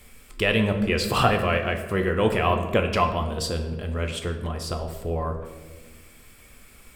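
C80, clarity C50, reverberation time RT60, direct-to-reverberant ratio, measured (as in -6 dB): 10.0 dB, 8.0 dB, 1.4 s, 4.5 dB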